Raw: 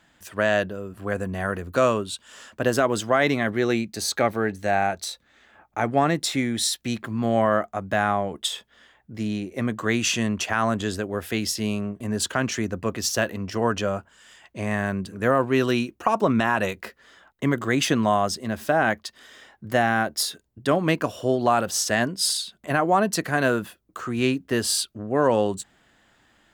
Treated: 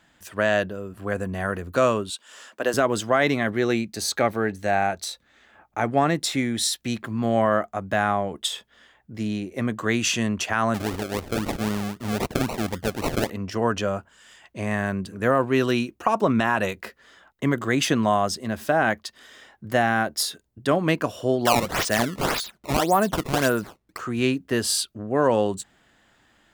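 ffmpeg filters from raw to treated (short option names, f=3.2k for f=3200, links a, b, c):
-filter_complex "[0:a]asettb=1/sr,asplit=3[a][b][c];[a]atrim=end=2.104[d];[b]atrim=start=2.1:end=2.74,asetpts=PTS-STARTPTS,afade=t=in:d=0.004:c=qsin,afade=t=out:st=0.636:d=0.004:c=qsin,highpass=350[e];[c]atrim=start=2.736[f];[d][e]acrossfade=d=0.004:c1=hsin:c2=qsin[g];[g][f]acrossfade=d=0.004:c1=qsin:c2=hsin,asettb=1/sr,asplit=3[h][i][j];[h]atrim=end=10.744[k];[i]atrim=start=10.74:end=13.3,asetpts=PTS-STARTPTS,afade=t=in:d=0.004:c=qsin,afade=t=out:st=2.556:d=0.004:c=qsin,acrusher=samples=37:mix=1:aa=0.000001:lfo=1:lforange=22.2:lforate=3.8[l];[j]atrim=start=13.296[m];[k][l]acrossfade=d=0.004:c1=hsin:c2=qsin[n];[n][m]acrossfade=d=0.004:c1=qsin:c2=hsin,asettb=1/sr,asplit=3[o][p][q];[o]atrim=end=21.454[r];[p]atrim=start=21.45:end=23.99,asetpts=PTS-STARTPTS,afade=t=in:d=0.004:c=qsin,afade=t=out:st=2.536:d=0.004:c=qsin,acrusher=samples=16:mix=1:aa=0.000001:lfo=1:lforange=25.6:lforate=1.8[s];[q]atrim=start=23.986[t];[r][s]acrossfade=d=0.004:c1=hsin:c2=qsin[u];[u][t]acrossfade=d=0.004:c1=qsin:c2=hsin"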